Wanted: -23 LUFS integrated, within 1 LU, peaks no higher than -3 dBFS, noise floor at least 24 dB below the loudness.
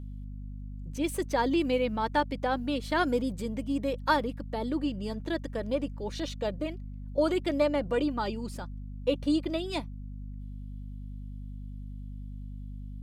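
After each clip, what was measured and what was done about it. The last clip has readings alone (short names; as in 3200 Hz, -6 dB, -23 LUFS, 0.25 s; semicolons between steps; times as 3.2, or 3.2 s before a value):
hum 50 Hz; harmonics up to 250 Hz; hum level -37 dBFS; loudness -30.5 LUFS; peak -11.5 dBFS; loudness target -23.0 LUFS
-> notches 50/100/150/200/250 Hz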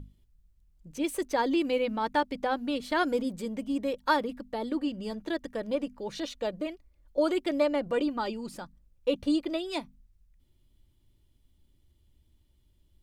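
hum none; loudness -30.5 LUFS; peak -12.0 dBFS; loudness target -23.0 LUFS
-> gain +7.5 dB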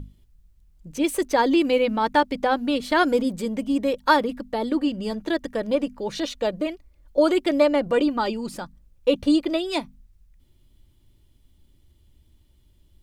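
loudness -23.0 LUFS; peak -4.5 dBFS; noise floor -59 dBFS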